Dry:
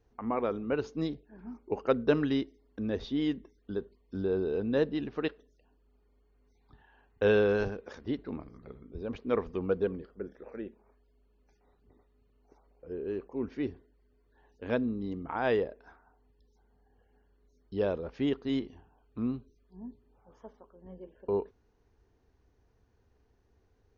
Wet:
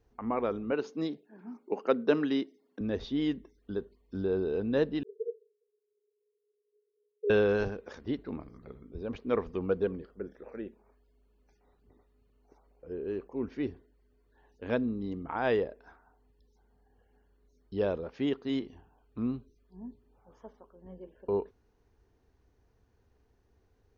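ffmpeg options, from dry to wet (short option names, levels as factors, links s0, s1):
-filter_complex "[0:a]asettb=1/sr,asplit=3[s0][s1][s2];[s0]atrim=end=0.714[s3];[s1]atrim=start=0.71:end=2.81,asetpts=PTS-STARTPTS,afade=t=in:d=0.004:c=qsin,afade=t=out:st=2.096:d=0.004:c=qsin,highpass=f=180:w=0.5412,highpass=f=180:w=1.3066[s4];[s2]atrim=start=2.806[s5];[s3][s4]acrossfade=d=0.004:c1=hsin:c2=qsin[s6];[s6][s5]acrossfade=d=0.004:c1=qsin:c2=hsin,asettb=1/sr,asplit=3[s7][s8][s9];[s7]atrim=end=5.034[s10];[s8]atrim=start=5.03:end=7.3,asetpts=PTS-STARTPTS,afade=t=in:d=0.004:c=qsin,afade=t=out:st=2.266:d=0.004:c=qsin,asuperpass=centerf=430:order=20:qfactor=4.4[s11];[s9]atrim=start=7.296[s12];[s10][s11]acrossfade=d=0.004:c1=hsin:c2=qsin[s13];[s13][s12]acrossfade=d=0.004:c1=qsin:c2=hsin,asettb=1/sr,asplit=3[s14][s15][s16];[s14]atrim=end=18.044[s17];[s15]atrim=start=18.04:end=18.67,asetpts=PTS-STARTPTS,afade=t=in:d=0.004:c=qsin,afade=t=out:st=0.626:d=0.004:c=qsin,highpass=f=130:p=1[s18];[s16]atrim=start=18.666[s19];[s17][s18]acrossfade=d=0.004:c1=hsin:c2=qsin[s20];[s20][s19]acrossfade=d=0.004:c1=qsin:c2=hsin"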